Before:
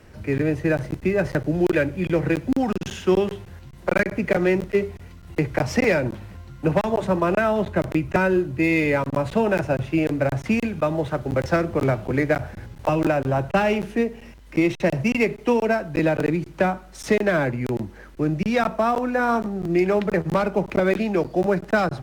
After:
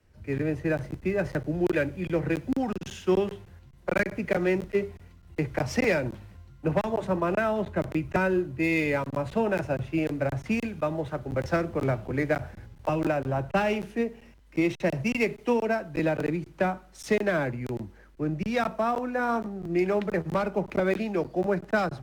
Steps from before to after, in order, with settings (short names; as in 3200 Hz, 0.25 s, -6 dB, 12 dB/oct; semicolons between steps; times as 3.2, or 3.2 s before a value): three-band expander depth 40%; gain -5.5 dB